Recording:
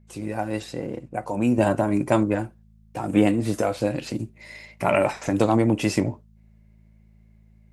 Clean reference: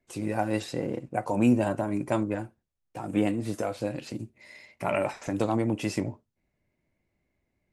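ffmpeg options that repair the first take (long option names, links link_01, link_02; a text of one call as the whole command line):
ffmpeg -i in.wav -af "bandreject=frequency=54:width_type=h:width=4,bandreject=frequency=108:width_type=h:width=4,bandreject=frequency=162:width_type=h:width=4,bandreject=frequency=216:width_type=h:width=4,asetnsamples=nb_out_samples=441:pad=0,asendcmd='1.58 volume volume -7dB',volume=0dB" out.wav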